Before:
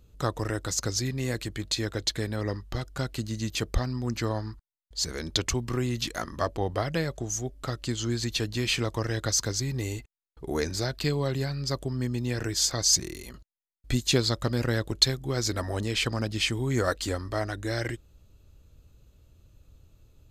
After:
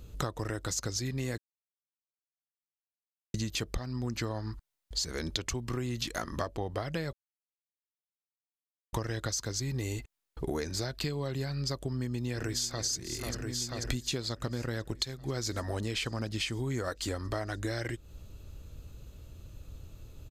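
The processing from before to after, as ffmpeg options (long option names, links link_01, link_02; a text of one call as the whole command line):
ffmpeg -i in.wav -filter_complex "[0:a]asplit=2[link_01][link_02];[link_02]afade=type=in:start_time=11.87:duration=0.01,afade=type=out:start_time=12.85:duration=0.01,aecho=0:1:490|980|1470|1960|2450|2940|3430|3920|4410|4900:0.251189|0.175832|0.123082|0.0861577|0.0603104|0.0422173|0.0295521|0.0206865|0.0144805|0.0101364[link_03];[link_01][link_03]amix=inputs=2:normalize=0,asplit=5[link_04][link_05][link_06][link_07][link_08];[link_04]atrim=end=1.38,asetpts=PTS-STARTPTS,afade=type=out:start_time=1.376:duration=0.004:curve=hsin[link_09];[link_05]atrim=start=1.38:end=3.34,asetpts=PTS-STARTPTS,volume=0[link_10];[link_06]atrim=start=3.34:end=7.13,asetpts=PTS-STARTPTS,afade=type=in:duration=0.004:curve=hsin,afade=type=out:start_time=3.786:duration=0.004:curve=hsin[link_11];[link_07]atrim=start=7.13:end=8.93,asetpts=PTS-STARTPTS,volume=0[link_12];[link_08]atrim=start=8.93,asetpts=PTS-STARTPTS,afade=type=in:duration=0.004:curve=hsin[link_13];[link_09][link_10][link_11][link_12][link_13]concat=n=5:v=0:a=1,acompressor=threshold=-39dB:ratio=12,volume=8.5dB" out.wav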